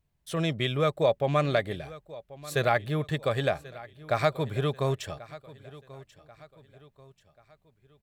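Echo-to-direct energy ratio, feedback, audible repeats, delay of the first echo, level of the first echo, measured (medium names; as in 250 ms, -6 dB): -18.0 dB, 43%, 3, 1087 ms, -19.0 dB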